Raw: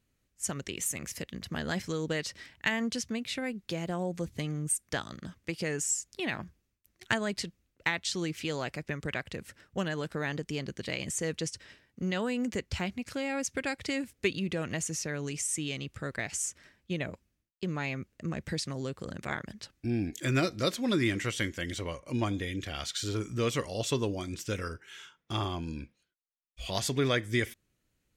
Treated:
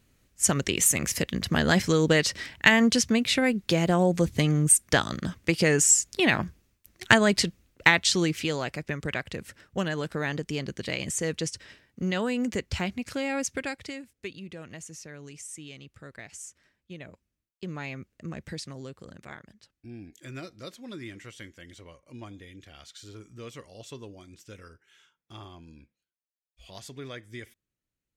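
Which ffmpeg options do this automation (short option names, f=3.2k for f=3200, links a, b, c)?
-af "volume=17.5dB,afade=t=out:st=7.92:d=0.68:silence=0.421697,afade=t=out:st=13.41:d=0.61:silence=0.237137,afade=t=in:st=17.03:d=0.67:silence=0.473151,afade=t=out:st=18.38:d=1.25:silence=0.316228"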